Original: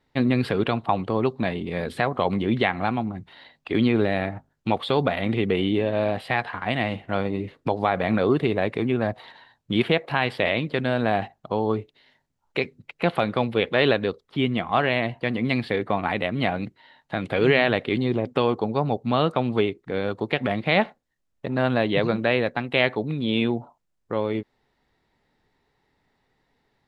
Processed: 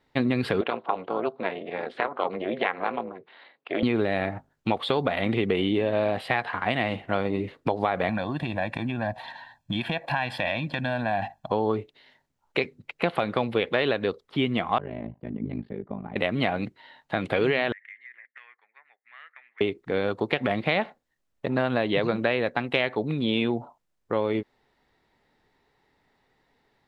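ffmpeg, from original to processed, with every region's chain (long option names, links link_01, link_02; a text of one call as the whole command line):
ffmpeg -i in.wav -filter_complex "[0:a]asettb=1/sr,asplit=3[link_01][link_02][link_03];[link_01]atrim=end=0.614[link_04];[link_02]atrim=start=0.61:end=3.83,asetpts=PTS-STARTPTS,afade=type=in:duration=0.004:curve=qsin,afade=type=out:start_time=3.216:duration=0.004:curve=qsin,tremolo=f=280:d=0.919,highpass=310,lowpass=3100[link_05];[link_03]atrim=start=3.826[link_06];[link_04][link_05]acrossfade=duration=0.004:curve1=hsin:curve2=qsin[link_07];[link_07][link_06]acrossfade=duration=0.004:curve1=qsin:curve2=hsin,asettb=1/sr,asplit=3[link_08][link_09][link_10];[link_08]atrim=end=8.094[link_11];[link_09]atrim=start=8.09:end=11.52,asetpts=PTS-STARTPTS,afade=type=in:duration=0.004:curve=qsin,afade=type=out:start_time=3.426:duration=0.004:curve=qsin,acompressor=threshold=-29dB:ratio=2.5:attack=3.2:release=140:knee=1:detection=peak,aecho=1:1:1.2:0.94,atrim=end_sample=151263[link_12];[link_10]atrim=start=11.516[link_13];[link_11][link_12]acrossfade=duration=0.004:curve1=hsin:curve2=qsin[link_14];[link_14][link_13]acrossfade=duration=0.004:curve1=qsin:curve2=hsin,asettb=1/sr,asplit=3[link_15][link_16][link_17];[link_15]atrim=end=14.784[link_18];[link_16]atrim=start=14.78:end=16.16,asetpts=PTS-STARTPTS,afade=type=in:duration=0.004:curve=qsin,afade=type=out:start_time=1.376:duration=0.004:curve=qsin,bandpass=frequency=110:width_type=q:width=0.84,aecho=1:1:5:0.54,atrim=end_sample=60858,tremolo=f=53:d=0.919[link_19];[link_17]atrim=start=16.156[link_20];[link_18][link_19]acrossfade=duration=0.004:curve1=hsin:curve2=qsin[link_21];[link_21][link_20]acrossfade=duration=0.004:curve1=qsin:curve2=hsin,asettb=1/sr,asplit=3[link_22][link_23][link_24];[link_22]atrim=end=17.724[link_25];[link_23]atrim=start=17.72:end=19.61,asetpts=PTS-STARTPTS,afade=type=in:duration=0.004:curve=qsin,afade=type=out:start_time=1.886:duration=0.004:curve=qsin,asuperpass=centerf=1900:order=4:qfactor=5,acompressor=threshold=-42dB:ratio=6:attack=3.2:release=140:knee=1:detection=peak[link_26];[link_24]atrim=start=19.606[link_27];[link_25][link_26]acrossfade=duration=0.004:curve1=hsin:curve2=qsin[link_28];[link_28][link_27]acrossfade=duration=0.004:curve1=qsin:curve2=hsin,bass=frequency=250:gain=-4,treble=frequency=4000:gain=-2,acompressor=threshold=-22dB:ratio=6,volume=2.5dB" out.wav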